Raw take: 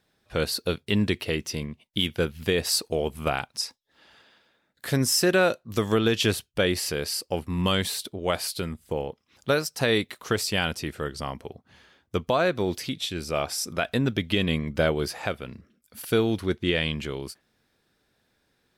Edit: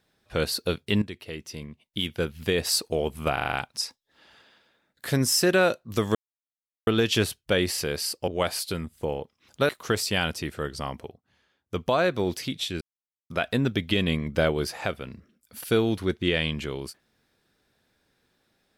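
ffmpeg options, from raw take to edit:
ffmpeg -i in.wav -filter_complex "[0:a]asplit=14[link_01][link_02][link_03][link_04][link_05][link_06][link_07][link_08][link_09][link_10][link_11][link_12][link_13][link_14];[link_01]atrim=end=1.02,asetpts=PTS-STARTPTS,afade=type=out:start_time=1.016:duration=0.004:curve=hsin:silence=0.188365[link_15];[link_02]atrim=start=1.02:end=3.372,asetpts=PTS-STARTPTS,afade=type=in:duration=1.67:silence=0.188365[link_16];[link_03]atrim=start=3.328:end=3.372[link_17];[link_04]atrim=start=3.328:end=3.372[link_18];[link_05]atrim=start=3.328:end=3.372[link_19];[link_06]atrim=start=3.328:end=3.372[link_20];[link_07]atrim=start=3.328:end=5.95,asetpts=PTS-STARTPTS,afade=type=out:start_time=2.618:duration=0.004:curve=hsin,apad=pad_dur=0.72[link_21];[link_08]atrim=start=5.95:end=7.362,asetpts=PTS-STARTPTS,afade=type=in:duration=0.004:curve=hsin[link_22];[link_09]atrim=start=8.158:end=9.572[link_23];[link_10]atrim=start=10.098:end=11.59,asetpts=PTS-STARTPTS,afade=type=out:start_time=1.342:duration=0.15:silence=0.237137[link_24];[link_11]atrim=start=11.59:end=12.07,asetpts=PTS-STARTPTS,volume=-12.5dB[link_25];[link_12]atrim=start=12.07:end=13.22,asetpts=PTS-STARTPTS,afade=type=in:duration=0.15:silence=0.237137,afade=type=out:start_time=1.146:duration=0.004:curve=hsin[link_26];[link_13]atrim=start=13.22:end=13.71,asetpts=PTS-STARTPTS,volume=0[link_27];[link_14]atrim=start=13.71,asetpts=PTS-STARTPTS,afade=type=in:duration=0.004:curve=hsin[link_28];[link_15][link_16]concat=n=2:v=0:a=1[link_29];[link_29][link_17]acrossfade=duration=0.004:curve1=hsin:curve2=hsin[link_30];[link_30][link_18]acrossfade=duration=0.004:curve1=hsin:curve2=hsin[link_31];[link_31][link_19]acrossfade=duration=0.004:curve1=hsin:curve2=hsin[link_32];[link_32][link_20]acrossfade=duration=0.004:curve1=hsin:curve2=hsin[link_33];[link_21][link_22]concat=n=2:v=0:a=1[link_34];[link_33][link_34]acrossfade=duration=0.004:curve1=hsin:curve2=hsin[link_35];[link_35][link_23]acrossfade=duration=0.004:curve1=hsin:curve2=hsin[link_36];[link_24][link_25][link_26][link_27][link_28]concat=n=5:v=0:a=1[link_37];[link_36][link_37]acrossfade=duration=0.004:curve1=hsin:curve2=hsin" out.wav

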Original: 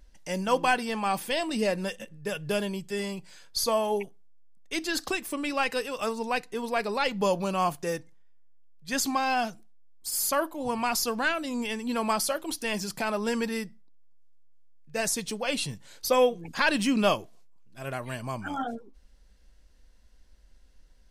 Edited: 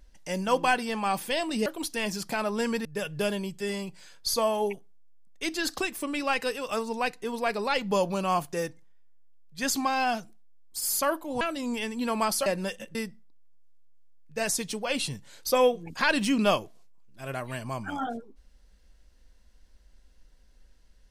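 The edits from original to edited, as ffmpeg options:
ffmpeg -i in.wav -filter_complex "[0:a]asplit=6[link_01][link_02][link_03][link_04][link_05][link_06];[link_01]atrim=end=1.662[link_07];[link_02]atrim=start=12.338:end=13.532[link_08];[link_03]atrim=start=2.148:end=10.712[link_09];[link_04]atrim=start=11.288:end=12.342[link_10];[link_05]atrim=start=1.658:end=2.152[link_11];[link_06]atrim=start=13.528[link_12];[link_07][link_08]acrossfade=duration=0.004:curve1=hsin:curve2=hsin[link_13];[link_13][link_09]acrossfade=duration=0.004:curve1=hsin:curve2=hsin[link_14];[link_14][link_10]acrossfade=duration=0.004:curve1=hsin:curve2=hsin[link_15];[link_15][link_11]acrossfade=duration=0.004:curve1=hsin:curve2=hsin[link_16];[link_16][link_12]acrossfade=duration=0.004:curve1=hsin:curve2=hsin" out.wav

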